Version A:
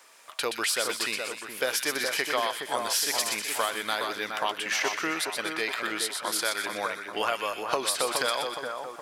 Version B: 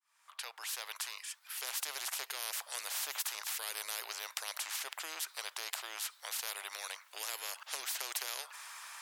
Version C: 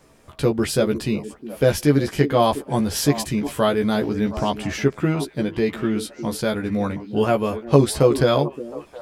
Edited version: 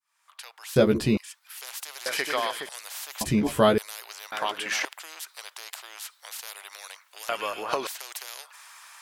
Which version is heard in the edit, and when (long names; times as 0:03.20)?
B
0:00.76–0:01.17: punch in from C
0:02.06–0:02.69: punch in from A
0:03.21–0:03.78: punch in from C
0:04.32–0:04.85: punch in from A
0:07.29–0:07.87: punch in from A